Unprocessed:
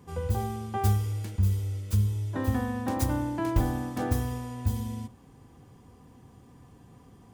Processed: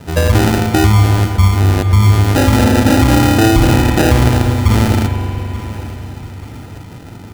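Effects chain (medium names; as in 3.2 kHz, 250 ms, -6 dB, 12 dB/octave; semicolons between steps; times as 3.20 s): rattle on loud lows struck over -32 dBFS, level -21 dBFS; spectral gate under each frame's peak -20 dB strong; hum notches 50/100/150/200/250 Hz; sample-and-hold 40×; feedback delay 881 ms, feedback 43%, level -18 dB; reverberation RT60 3.7 s, pre-delay 121 ms, DRR 7.5 dB; loudness maximiser +20.5 dB; trim -1 dB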